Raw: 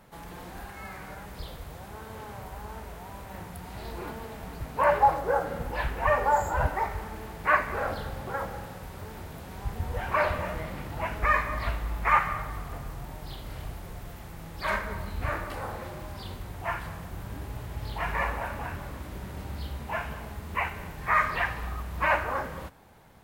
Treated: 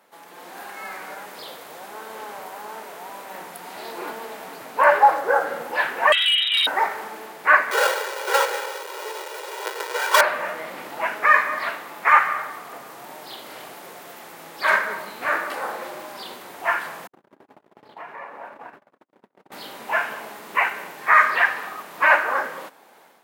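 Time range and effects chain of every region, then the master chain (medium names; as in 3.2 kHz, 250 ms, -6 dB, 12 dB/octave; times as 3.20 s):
6.12–6.67 s: frequency inversion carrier 3.8 kHz + compression 4:1, threshold -23 dBFS + hard clipper -22 dBFS
7.71–10.21 s: square wave that keeps the level + Chebyshev high-pass 390 Hz, order 4 + comb 2.1 ms, depth 71%
17.07–19.52 s: gate -35 dBFS, range -55 dB + low-pass 1 kHz 6 dB/octave + compression 10:1, threshold -38 dBFS
whole clip: Bessel high-pass 400 Hz, order 4; dynamic bell 1.6 kHz, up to +6 dB, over -44 dBFS, Q 2.4; level rider gain up to 8 dB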